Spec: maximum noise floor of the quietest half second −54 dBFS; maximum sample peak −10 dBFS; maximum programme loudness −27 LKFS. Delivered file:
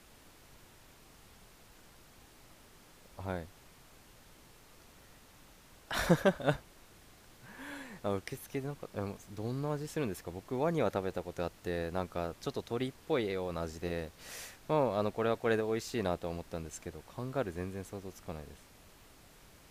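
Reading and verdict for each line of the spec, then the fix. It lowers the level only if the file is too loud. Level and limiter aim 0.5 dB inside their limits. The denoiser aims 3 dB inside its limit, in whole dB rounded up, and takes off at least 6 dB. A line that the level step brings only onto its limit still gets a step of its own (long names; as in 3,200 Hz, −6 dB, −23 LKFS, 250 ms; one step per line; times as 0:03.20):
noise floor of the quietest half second −59 dBFS: in spec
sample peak −13.0 dBFS: in spec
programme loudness −36.0 LKFS: in spec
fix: no processing needed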